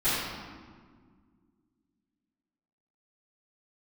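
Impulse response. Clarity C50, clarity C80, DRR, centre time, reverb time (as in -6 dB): -2.5 dB, 0.0 dB, -18.5 dB, 107 ms, 1.8 s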